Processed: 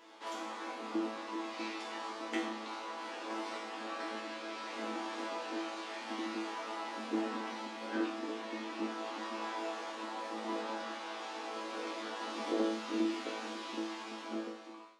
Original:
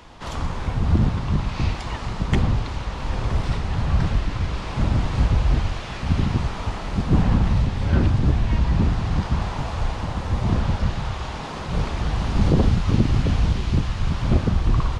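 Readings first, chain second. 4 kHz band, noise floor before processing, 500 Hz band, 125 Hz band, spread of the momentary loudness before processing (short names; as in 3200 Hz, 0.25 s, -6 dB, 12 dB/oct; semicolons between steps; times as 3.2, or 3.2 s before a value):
-9.0 dB, -32 dBFS, -8.0 dB, under -40 dB, 9 LU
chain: ending faded out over 1.04 s; brick-wall FIR high-pass 230 Hz; resonator bank A2 fifth, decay 0.54 s; gain +7 dB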